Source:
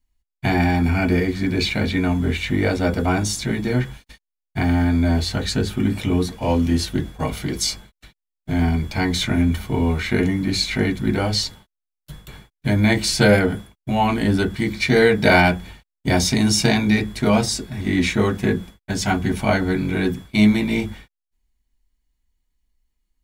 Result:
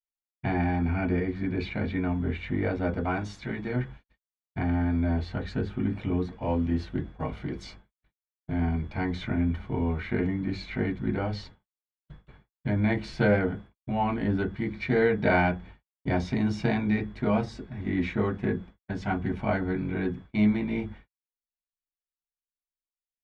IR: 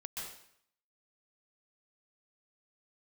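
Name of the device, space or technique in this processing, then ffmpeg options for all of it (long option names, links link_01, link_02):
hearing-loss simulation: -filter_complex "[0:a]asettb=1/sr,asplit=3[link_01][link_02][link_03];[link_01]atrim=end=3.054[link_04];[link_02]atrim=start=3.05:end=3.76,asetpts=PTS-STARTPTS,afade=type=in:duration=0.004:curve=qsin,afade=type=out:start_time=0.706:duration=0.004:curve=qsin,tiltshelf=frequency=640:gain=-3.5[link_05];[link_03]atrim=start=3.756[link_06];[link_04][link_05]acrossfade=duration=0.004:curve1=hsin:curve2=qsin[link_07];[link_07][link_06]acrossfade=duration=0.004:curve1=qsin:curve2=hsin,lowpass=2000,agate=range=-33dB:threshold=-34dB:ratio=3:detection=peak,volume=-8dB"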